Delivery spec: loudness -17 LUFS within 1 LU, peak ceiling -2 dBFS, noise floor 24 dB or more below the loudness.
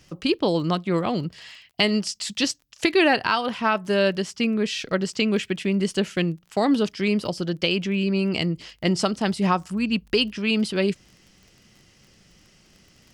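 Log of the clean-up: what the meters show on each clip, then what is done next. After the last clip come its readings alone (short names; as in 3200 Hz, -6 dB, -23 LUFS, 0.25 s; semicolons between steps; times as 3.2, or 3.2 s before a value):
ticks 24/s; loudness -23.5 LUFS; peak -7.0 dBFS; loudness target -17.0 LUFS
-> de-click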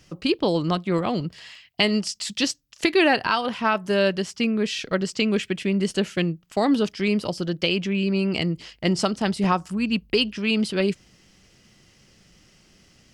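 ticks 0.30/s; loudness -23.5 LUFS; peak -7.0 dBFS; loudness target -17.0 LUFS
-> gain +6.5 dB; limiter -2 dBFS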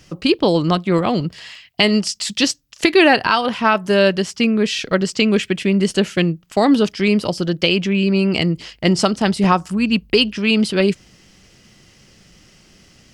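loudness -17.0 LUFS; peak -2.0 dBFS; noise floor -51 dBFS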